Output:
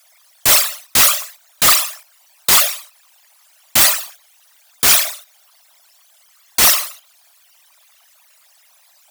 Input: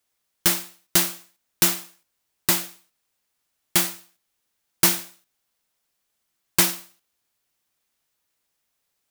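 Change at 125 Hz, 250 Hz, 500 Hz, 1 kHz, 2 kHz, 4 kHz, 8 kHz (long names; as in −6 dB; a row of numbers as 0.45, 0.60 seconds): −1.0, −4.0, +7.0, +11.0, +10.0, +11.0, +10.0 decibels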